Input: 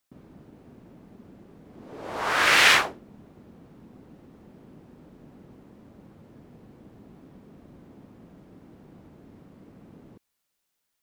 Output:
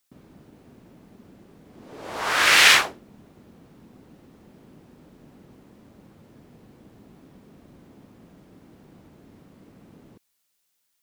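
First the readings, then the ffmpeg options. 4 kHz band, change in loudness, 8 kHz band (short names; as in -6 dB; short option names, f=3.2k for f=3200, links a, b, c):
+4.5 dB, +3.5 dB, +6.0 dB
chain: -af "highshelf=f=2.2k:g=7.5,volume=-1dB"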